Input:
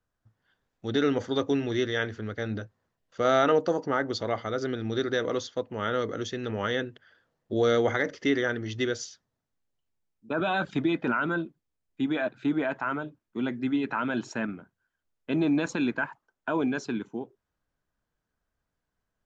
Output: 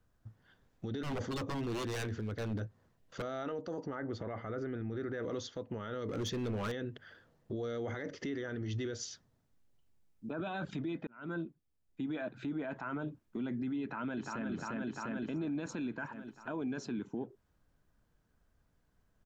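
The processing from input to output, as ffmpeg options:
-filter_complex "[0:a]asettb=1/sr,asplit=3[s0][s1][s2];[s0]atrim=end=1.034[s3];[s1]atrim=start=1.03:end=3.22,asetpts=PTS-STARTPTS,afade=t=in:d=0.004:c=qsin,afade=t=out:st=2.186:d=0.004:c=qsin,aeval=exprs='0.0447*(abs(mod(val(0)/0.0447+3,4)-2)-1)':c=same[s4];[s2]atrim=start=3.216[s5];[s3][s4]acrossfade=d=0.004:c1=hsin:c2=qsin[s6];[s6][s5]acrossfade=d=0.004:c1=qsin:c2=hsin,asettb=1/sr,asplit=3[s7][s8][s9];[s7]atrim=end=3.954[s10];[s8]atrim=start=3.95:end=5.23,asetpts=PTS-STARTPTS,afade=t=in:d=0.004:c=qsin,afade=t=out:st=1.276:d=0.004:c=qsin,highshelf=f=2800:t=q:w=1.5:g=-10[s11];[s9]atrim=start=5.226[s12];[s10][s11]acrossfade=d=0.004:c1=hsin:c2=qsin[s13];[s13][s12]acrossfade=d=0.004:c1=qsin:c2=hsin,asettb=1/sr,asplit=3[s14][s15][s16];[s14]atrim=end=6.084[s17];[s15]atrim=start=6.08:end=6.72,asetpts=PTS-STARTPTS,afade=t=in:d=0.004:c=qsin,afade=t=out:st=0.636:d=0.004:c=qsin,asoftclip=type=hard:threshold=0.0251[s18];[s16]atrim=start=6.716[s19];[s17][s18]acrossfade=d=0.004:c1=hsin:c2=qsin[s20];[s20][s19]acrossfade=d=0.004:c1=qsin:c2=hsin,asplit=2[s21][s22];[s22]afade=t=in:st=13.82:d=0.01,afade=t=out:st=14.47:d=0.01,aecho=0:1:350|700|1050|1400|1750|2100|2450|2800:0.562341|0.337405|0.202443|0.121466|0.0728794|0.0437277|0.0262366|0.015742[s23];[s21][s23]amix=inputs=2:normalize=0,asplit=2[s24][s25];[s24]atrim=end=11.07,asetpts=PTS-STARTPTS,afade=t=out:st=11.066:d=0.004:c=hsin[s26];[s25]atrim=start=11.07,asetpts=PTS-STARTPTS,afade=t=in:d=1.65[s27];[s26][s27]concat=n=2:v=0:a=1,lowshelf=f=390:g=8,acompressor=threshold=0.02:ratio=8,alimiter=level_in=3.16:limit=0.0631:level=0:latency=1:release=12,volume=0.316,volume=1.5"

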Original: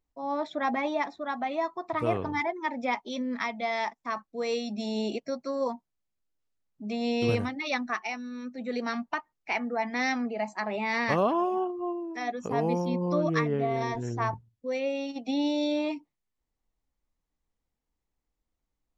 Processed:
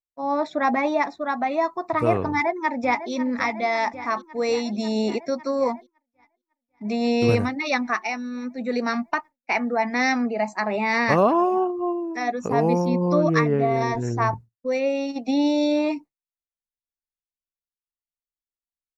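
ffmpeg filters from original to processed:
-filter_complex "[0:a]asplit=2[s0][s1];[s1]afade=t=in:st=2.28:d=0.01,afade=t=out:st=3.11:d=0.01,aecho=0:1:550|1100|1650|2200|2750|3300|3850|4400|4950|5500|6050|6600:0.251189|0.188391|0.141294|0.10597|0.0794777|0.0596082|0.0447062|0.0335296|0.0251472|0.0188604|0.0141453|0.010609[s2];[s0][s2]amix=inputs=2:normalize=0,agate=range=0.0224:threshold=0.0112:ratio=3:detection=peak,equalizer=f=3200:w=6.8:g=-14.5,volume=2.24"

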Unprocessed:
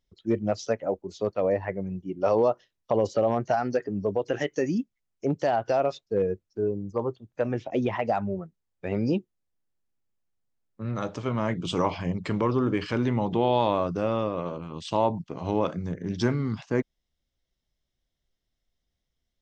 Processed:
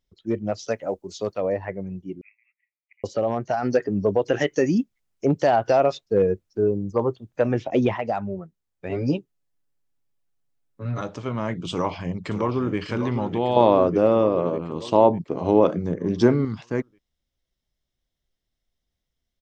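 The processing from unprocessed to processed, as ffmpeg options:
-filter_complex "[0:a]asettb=1/sr,asplit=3[s0][s1][s2];[s0]atrim=end=0.684[s3];[s1]atrim=start=0.68:end=1.38,asetpts=PTS-STARTPTS,afade=t=in:d=0.004:c=qsin,afade=t=out:st=0.696:d=0.004:c=qsin,highshelf=f=2900:g=10.5[s4];[s2]atrim=start=1.376[s5];[s3][s4]acrossfade=d=0.004:c1=hsin:c2=qsin[s6];[s6][s5]acrossfade=d=0.004:c1=qsin:c2=hsin,asettb=1/sr,asplit=3[s7][s8][s9];[s7]atrim=end=2.214[s10];[s8]atrim=start=2.21:end=3.04,asetpts=PTS-STARTPTS,afade=t=in:d=0.004:c=qsin,afade=t=out:st=0.826:d=0.004:c=qsin,asuperpass=centerf=2200:order=8:qfactor=4.1[s11];[s9]atrim=start=3.036[s12];[s10][s11]acrossfade=d=0.004:c1=hsin:c2=qsin[s13];[s13][s12]acrossfade=d=0.004:c1=qsin:c2=hsin,asplit=3[s14][s15][s16];[s14]afade=t=out:st=3.62:d=0.02[s17];[s15]acontrast=51,afade=t=in:st=3.62:d=0.02,afade=t=out:st=7.92:d=0.02[s18];[s16]afade=t=in:st=7.92:d=0.02[s19];[s17][s18][s19]amix=inputs=3:normalize=0,asettb=1/sr,asplit=3[s20][s21][s22];[s20]atrim=end=8.894[s23];[s21]atrim=start=8.89:end=11.01,asetpts=PTS-STARTPTS,afade=t=in:d=0.004:c=qsin,afade=t=out:st=2.116:d=0.004:c=qsin,aecho=1:1:7.1:0.86,atrim=end_sample=93492[s24];[s22]atrim=start=11.006[s25];[s23][s24]acrossfade=d=0.004:c1=hsin:c2=qsin[s26];[s26][s25]acrossfade=d=0.004:c1=qsin:c2=hsin,asplit=2[s27][s28];[s28]afade=t=in:st=11.71:d=0.01,afade=t=out:st=12.78:d=0.01,aecho=0:1:600|1200|1800|2400|3000|3600|4200:0.334965|0.200979|0.120588|0.0723525|0.0434115|0.0260469|0.0156281[s29];[s27][s29]amix=inputs=2:normalize=0,asettb=1/sr,asplit=3[s30][s31][s32];[s30]atrim=end=13.564[s33];[s31]atrim=start=13.56:end=16.45,asetpts=PTS-STARTPTS,afade=t=in:d=0.004:c=qsin,afade=t=out:st=2.886:d=0.004:c=qsin,equalizer=f=420:w=0.56:g=10.5[s34];[s32]atrim=start=16.446[s35];[s33][s34]acrossfade=d=0.004:c1=hsin:c2=qsin[s36];[s36][s35]acrossfade=d=0.004:c1=qsin:c2=hsin"

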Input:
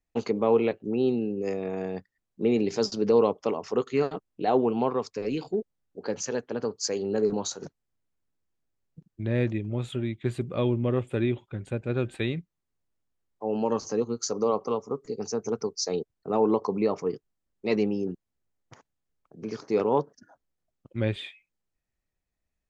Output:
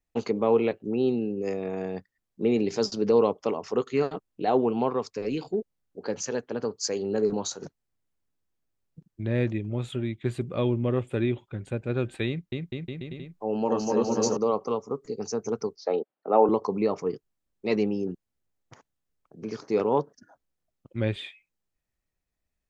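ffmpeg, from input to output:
-filter_complex "[0:a]asettb=1/sr,asplit=3[s0][s1][s2];[s0]atrim=end=12.274[s3];[s1]atrim=start=12.27:end=14.37,asetpts=PTS-STARTPTS,afade=t=in:d=0.004:c=qsin,afade=t=out:st=2.096:d=0.004:c=qsin,aecho=1:1:250|450|610|738|840.4|922.3:0.794|0.631|0.501|0.398|0.316|0.251,atrim=end_sample=92610[s4];[s2]atrim=start=14.366[s5];[s3][s4]acrossfade=d=0.004:c1=hsin:c2=qsin[s6];[s6][s5]acrossfade=d=0.004:c1=qsin:c2=hsin,asettb=1/sr,asplit=3[s7][s8][s9];[s7]atrim=end=15.764[s10];[s8]atrim=start=15.76:end=16.49,asetpts=PTS-STARTPTS,afade=t=in:d=0.004:c=qsin,afade=t=out:st=0.726:d=0.004:c=qsin,highpass=f=220:w=0.5412,highpass=f=220:w=1.3066,equalizer=f=570:t=q:w=4:g=9,equalizer=f=810:t=q:w=4:g=8,equalizer=f=1300:t=q:w=4:g=5,lowpass=f=3200:w=0.5412,lowpass=f=3200:w=1.3066[s11];[s9]atrim=start=16.486[s12];[s10][s11]acrossfade=d=0.004:c1=hsin:c2=qsin[s13];[s13][s12]acrossfade=d=0.004:c1=qsin:c2=hsin"

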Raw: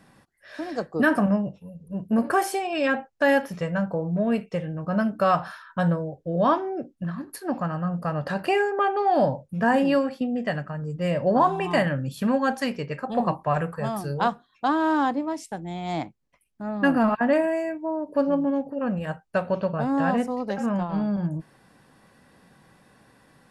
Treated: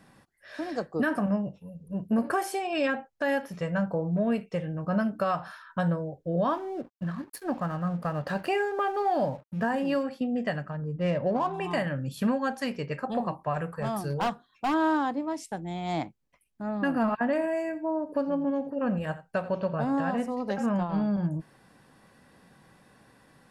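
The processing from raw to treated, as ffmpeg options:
-filter_complex "[0:a]asettb=1/sr,asplit=3[s0][s1][s2];[s0]atrim=end=6.494[s3];[s1]atrim=start=6.49:end=10.03,asetpts=PTS-STARTPTS,afade=t=in:d=0.004:c=qsin,afade=t=out:st=3.536:d=0.004:c=qsin,aeval=exprs='sgn(val(0))*max(abs(val(0))-0.00335,0)':c=same[s4];[s2]atrim=start=10.026[s5];[s3][s4]acrossfade=d=0.004:c1=hsin:c2=qsin[s6];[s6][s5]acrossfade=d=0.004:c1=qsin:c2=hsin,asettb=1/sr,asplit=3[s7][s8][s9];[s7]atrim=end=10.714[s10];[s8]atrim=start=10.71:end=11.54,asetpts=PTS-STARTPTS,afade=t=in:d=0.004:c=qsin,afade=t=out:st=0.826:d=0.004:c=qsin,adynamicsmooth=sensitivity=3.5:basefreq=2200[s11];[s9]atrim=start=11.536[s12];[s10][s11]acrossfade=d=0.004:c1=hsin:c2=qsin[s13];[s13][s12]acrossfade=d=0.004:c1=qsin:c2=hsin,asettb=1/sr,asplit=3[s14][s15][s16];[s14]atrim=end=13.804[s17];[s15]atrim=start=13.8:end=14.74,asetpts=PTS-STARTPTS,afade=t=in:d=0.004:c=qsin,afade=t=out:st=0.936:d=0.004:c=qsin,asoftclip=type=hard:threshold=0.0841[s18];[s16]atrim=start=14.736[s19];[s17][s18]acrossfade=d=0.004:c1=hsin:c2=qsin[s20];[s20][s19]acrossfade=d=0.004:c1=qsin:c2=hsin,asettb=1/sr,asplit=3[s21][s22][s23];[s21]atrim=end=17.154[s24];[s22]atrim=start=17.15:end=20.54,asetpts=PTS-STARTPTS,afade=t=in:d=0.004:c=qsin,afade=t=out:st=3.386:d=0.004:c=qsin,aecho=1:1:85:0.158,atrim=end_sample=149499[s25];[s23]atrim=start=20.536[s26];[s24][s25]acrossfade=d=0.004:c1=hsin:c2=qsin[s27];[s27][s26]acrossfade=d=0.004:c1=qsin:c2=hsin,alimiter=limit=0.15:level=0:latency=1:release=416,volume=0.841"

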